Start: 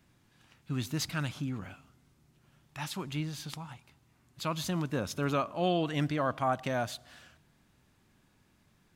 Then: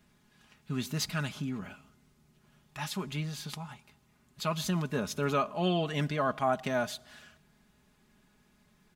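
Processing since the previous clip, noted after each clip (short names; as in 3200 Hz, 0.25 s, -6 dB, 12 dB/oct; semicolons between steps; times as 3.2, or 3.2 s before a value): comb 4.8 ms, depth 60%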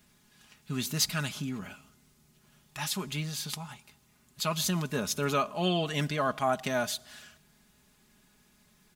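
high shelf 3600 Hz +10 dB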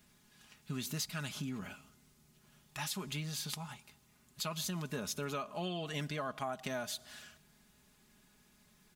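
compressor 6:1, threshold -33 dBFS, peak gain reduction 11 dB; gain -2.5 dB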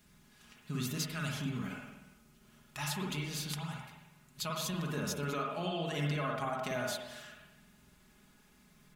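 reverb RT60 1.0 s, pre-delay 47 ms, DRR -1 dB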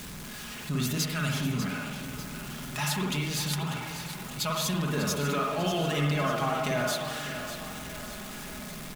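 zero-crossing step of -41.5 dBFS; on a send: feedback echo 0.595 s, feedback 52%, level -10.5 dB; on the sum: gain +5.5 dB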